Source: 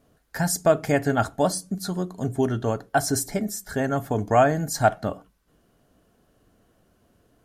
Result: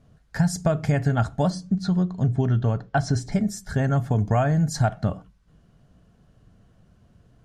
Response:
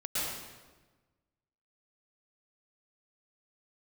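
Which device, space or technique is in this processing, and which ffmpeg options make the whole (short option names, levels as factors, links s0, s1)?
jukebox: -filter_complex "[0:a]lowpass=7200,lowshelf=f=220:t=q:w=1.5:g=9,acompressor=threshold=0.141:ratio=5,asettb=1/sr,asplit=3[s0][s1][s2];[s0]atrim=end=1.504[s3];[s1]atrim=start=1.5:end=3.32,asetpts=PTS-STARTPTS,afade=t=in:d=0.004:c=qsin,afade=t=out:st=1.816:d=0.004:c=qsin,lowpass=5200[s4];[s2]atrim=start=3.316[s5];[s3][s4]acrossfade=d=0.004:c1=hsin:c2=qsin[s6];[s6][s5]acrossfade=d=0.004:c1=qsin:c2=hsin"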